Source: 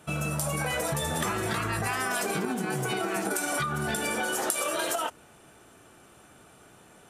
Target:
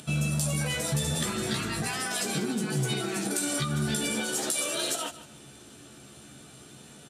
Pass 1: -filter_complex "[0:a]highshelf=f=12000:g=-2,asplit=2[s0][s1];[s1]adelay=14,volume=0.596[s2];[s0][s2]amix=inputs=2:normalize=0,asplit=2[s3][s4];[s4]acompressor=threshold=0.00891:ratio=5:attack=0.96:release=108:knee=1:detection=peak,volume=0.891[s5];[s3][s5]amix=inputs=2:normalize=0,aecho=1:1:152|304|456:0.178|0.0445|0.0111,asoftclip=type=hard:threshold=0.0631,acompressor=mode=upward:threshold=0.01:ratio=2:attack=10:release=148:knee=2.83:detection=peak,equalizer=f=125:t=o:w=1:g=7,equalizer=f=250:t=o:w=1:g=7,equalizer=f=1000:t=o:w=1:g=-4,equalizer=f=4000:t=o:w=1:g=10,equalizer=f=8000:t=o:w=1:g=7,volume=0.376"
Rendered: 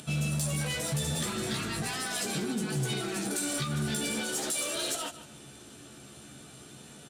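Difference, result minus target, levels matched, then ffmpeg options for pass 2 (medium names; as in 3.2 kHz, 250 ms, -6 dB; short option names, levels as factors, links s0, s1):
hard clipper: distortion +17 dB; compression: peak gain reduction +7 dB
-filter_complex "[0:a]highshelf=f=12000:g=-2,asplit=2[s0][s1];[s1]adelay=14,volume=0.596[s2];[s0][s2]amix=inputs=2:normalize=0,asplit=2[s3][s4];[s4]acompressor=threshold=0.0237:ratio=5:attack=0.96:release=108:knee=1:detection=peak,volume=0.891[s5];[s3][s5]amix=inputs=2:normalize=0,aecho=1:1:152|304|456:0.178|0.0445|0.0111,asoftclip=type=hard:threshold=0.188,acompressor=mode=upward:threshold=0.01:ratio=2:attack=10:release=148:knee=2.83:detection=peak,equalizer=f=125:t=o:w=1:g=7,equalizer=f=250:t=o:w=1:g=7,equalizer=f=1000:t=o:w=1:g=-4,equalizer=f=4000:t=o:w=1:g=10,equalizer=f=8000:t=o:w=1:g=7,volume=0.376"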